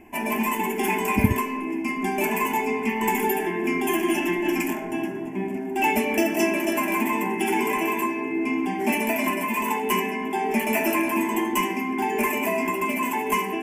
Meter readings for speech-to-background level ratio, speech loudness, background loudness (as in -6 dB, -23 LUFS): -2.0 dB, -26.5 LUFS, -24.5 LUFS